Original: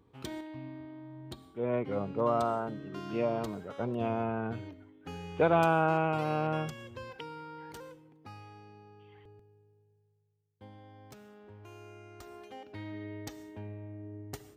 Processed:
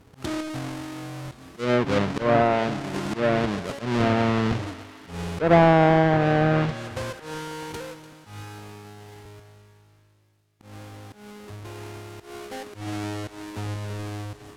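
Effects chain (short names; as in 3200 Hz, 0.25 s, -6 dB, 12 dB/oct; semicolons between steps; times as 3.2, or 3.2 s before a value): half-waves squared off; treble ducked by the level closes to 1700 Hz, closed at -21 dBFS; auto swell 0.144 s; on a send: thinning echo 0.294 s, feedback 62%, high-pass 880 Hz, level -14 dB; on the sum: gain +7 dB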